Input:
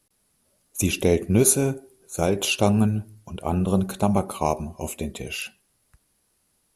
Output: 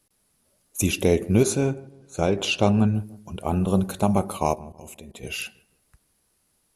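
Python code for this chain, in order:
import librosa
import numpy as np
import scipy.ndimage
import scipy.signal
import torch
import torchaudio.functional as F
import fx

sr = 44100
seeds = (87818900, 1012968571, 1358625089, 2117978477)

y = fx.lowpass(x, sr, hz=5500.0, slope=12, at=(1.43, 2.95))
y = fx.level_steps(y, sr, step_db=21, at=(4.54, 5.22), fade=0.02)
y = fx.echo_filtered(y, sr, ms=160, feedback_pct=42, hz=1200.0, wet_db=-20)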